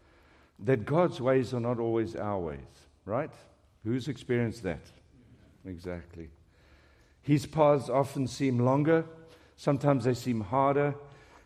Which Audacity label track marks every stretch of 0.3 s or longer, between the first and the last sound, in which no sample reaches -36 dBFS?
2.610000	3.070000	silence
3.260000	3.860000	silence
4.760000	5.670000	silence
6.240000	7.280000	silence
9.040000	9.620000	silence